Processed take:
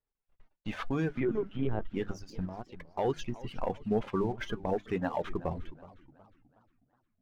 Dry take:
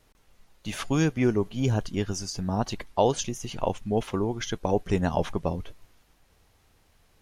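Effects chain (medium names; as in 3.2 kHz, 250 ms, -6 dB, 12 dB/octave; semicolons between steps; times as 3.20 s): low-pass 2.2 kHz 12 dB/octave; gate -54 dBFS, range -22 dB; hum notches 50/100/150/200/250/300/350 Hz; reverb removal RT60 1.1 s; 2.45–2.99 s: compression 10:1, threshold -37 dBFS, peak gain reduction 16 dB; 4.76–5.24 s: high-pass 270 Hz 6 dB/octave; waveshaping leveller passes 1; peak limiter -17 dBFS, peak gain reduction 7.5 dB; flange 0.35 Hz, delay 2.2 ms, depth 3.2 ms, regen +71%; 1.15–1.93 s: LPC vocoder at 8 kHz pitch kept; modulated delay 364 ms, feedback 44%, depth 191 cents, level -18.5 dB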